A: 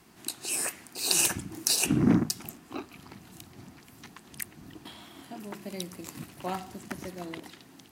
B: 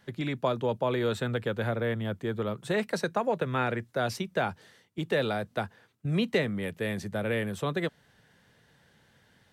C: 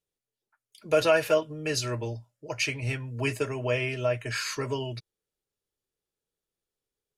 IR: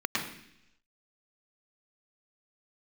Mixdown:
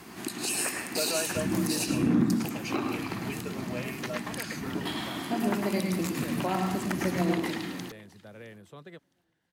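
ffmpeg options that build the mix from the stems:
-filter_complex "[0:a]acompressor=threshold=-32dB:ratio=6,alimiter=level_in=5.5dB:limit=-24dB:level=0:latency=1:release=123,volume=-5.5dB,acontrast=50,volume=0.5dB,asplit=3[link_01][link_02][link_03];[link_02]volume=-5.5dB[link_04];[link_03]volume=-19dB[link_05];[1:a]adelay=1100,volume=-17dB[link_06];[2:a]highpass=frequency=140:width=0.5412,highpass=frequency=140:width=1.3066,adelay=50,volume=-11dB[link_07];[3:a]atrim=start_sample=2205[link_08];[link_04][link_08]afir=irnorm=-1:irlink=0[link_09];[link_05]aecho=0:1:663|1326|1989|2652:1|0.24|0.0576|0.0138[link_10];[link_01][link_06][link_07][link_09][link_10]amix=inputs=5:normalize=0"

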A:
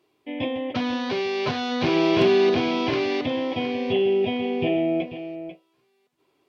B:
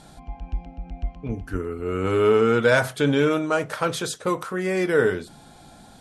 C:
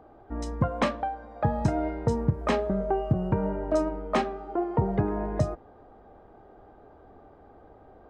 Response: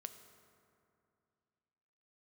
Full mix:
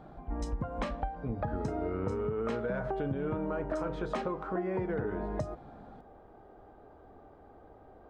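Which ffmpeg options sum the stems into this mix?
-filter_complex "[1:a]volume=-3.5dB[link_01];[2:a]alimiter=limit=-16dB:level=0:latency=1:release=229,volume=-2.5dB[link_02];[link_01]lowpass=1300,alimiter=limit=-19.5dB:level=0:latency=1:release=73,volume=0dB[link_03];[link_02][link_03]amix=inputs=2:normalize=0,acompressor=threshold=-30dB:ratio=6"

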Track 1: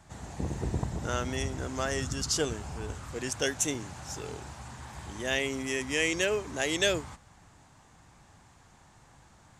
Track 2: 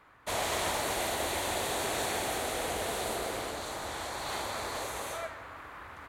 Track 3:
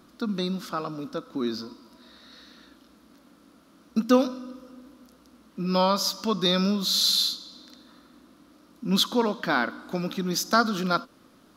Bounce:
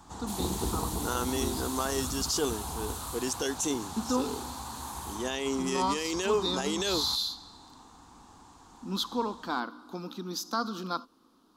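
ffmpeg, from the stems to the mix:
ffmpeg -i stem1.wav -i stem2.wav -i stem3.wav -filter_complex "[0:a]volume=2.5dB[link_01];[1:a]aderivative,volume=-2.5dB[link_02];[2:a]volume=-9dB[link_03];[link_01][link_03]amix=inputs=2:normalize=0,equalizer=frequency=590:width=3.9:gain=-13,alimiter=limit=-21dB:level=0:latency=1:release=12,volume=0dB[link_04];[link_02][link_04]amix=inputs=2:normalize=0,equalizer=frequency=125:width_type=o:width=1:gain=-9,equalizer=frequency=250:width_type=o:width=1:gain=3,equalizer=frequency=500:width_type=o:width=1:gain=3,equalizer=frequency=1000:width_type=o:width=1:gain=9,equalizer=frequency=2000:width_type=o:width=1:gain=-11,equalizer=frequency=4000:width_type=o:width=1:gain=4" out.wav

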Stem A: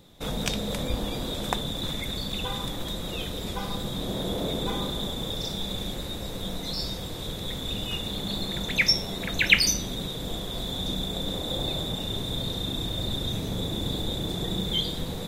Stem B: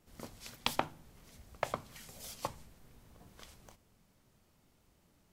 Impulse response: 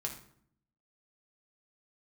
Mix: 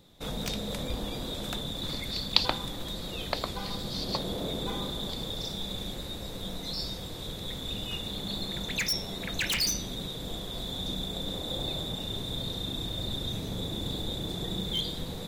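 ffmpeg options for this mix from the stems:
-filter_complex "[0:a]aeval=exprs='0.119*(abs(mod(val(0)/0.119+3,4)-2)-1)':channel_layout=same,volume=-4.5dB[link_01];[1:a]lowpass=frequency=4400:width_type=q:width=7.6,adelay=1700,volume=1.5dB[link_02];[link_01][link_02]amix=inputs=2:normalize=0,equalizer=frequency=4300:width_type=o:width=0.45:gain=3"

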